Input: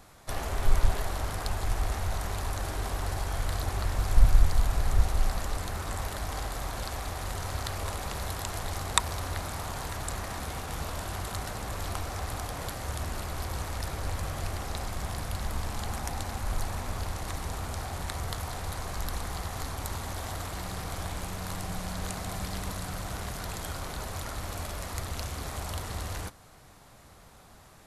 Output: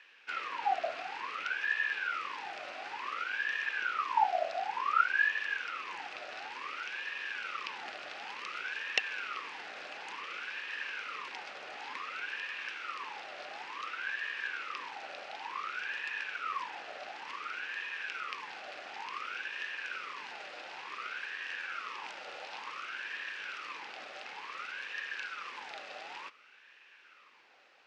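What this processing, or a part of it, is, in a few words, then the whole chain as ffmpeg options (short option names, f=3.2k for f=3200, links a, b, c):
voice changer toy: -af "aeval=exprs='val(0)*sin(2*PI*1200*n/s+1200*0.45/0.56*sin(2*PI*0.56*n/s))':c=same,highpass=500,equalizer=f=670:t=q:w=4:g=-10,equalizer=f=950:t=q:w=4:g=-5,equalizer=f=2.6k:t=q:w=4:g=8,lowpass=f=4.8k:w=0.5412,lowpass=f=4.8k:w=1.3066,volume=-3dB"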